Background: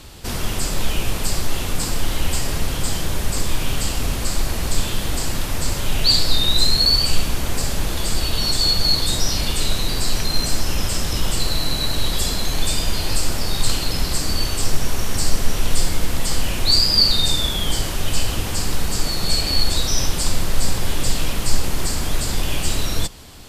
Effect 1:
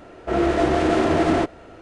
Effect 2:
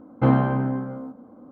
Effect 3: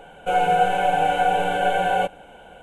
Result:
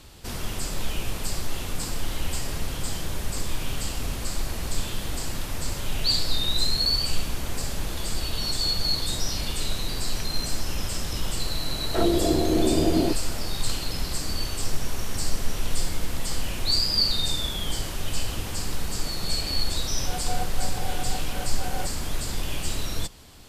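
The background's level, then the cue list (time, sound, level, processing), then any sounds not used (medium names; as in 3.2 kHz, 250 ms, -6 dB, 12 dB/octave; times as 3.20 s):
background -7.5 dB
11.67 s: add 1 -1 dB + low-pass that closes with the level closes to 450 Hz, closed at -16 dBFS
19.80 s: add 3 -13.5 dB + transformer saturation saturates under 220 Hz
not used: 2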